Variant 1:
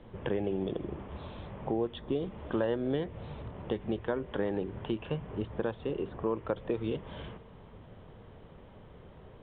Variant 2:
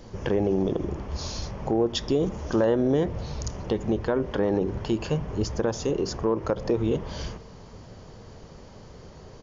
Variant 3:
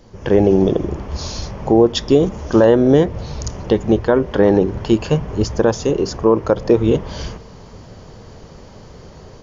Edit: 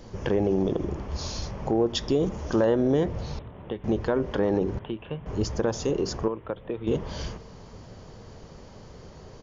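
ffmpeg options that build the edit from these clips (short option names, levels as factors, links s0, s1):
-filter_complex "[0:a]asplit=3[s0][s1][s2];[1:a]asplit=4[s3][s4][s5][s6];[s3]atrim=end=3.392[s7];[s0]atrim=start=3.388:end=3.842[s8];[s4]atrim=start=3.838:end=4.792[s9];[s1]atrim=start=4.788:end=5.262[s10];[s5]atrim=start=5.258:end=6.282[s11];[s2]atrim=start=6.278:end=6.872[s12];[s6]atrim=start=6.868[s13];[s7][s8]acrossfade=d=0.004:c1=hsin:c2=hsin[s14];[s14][s9]acrossfade=d=0.004:c1=hsin:c2=hsin[s15];[s15][s10]acrossfade=d=0.004:c1=hsin:c2=hsin[s16];[s16][s11]acrossfade=d=0.004:c1=hsin:c2=hsin[s17];[s17][s12]acrossfade=d=0.004:c1=hsin:c2=hsin[s18];[s18][s13]acrossfade=d=0.004:c1=hsin:c2=hsin"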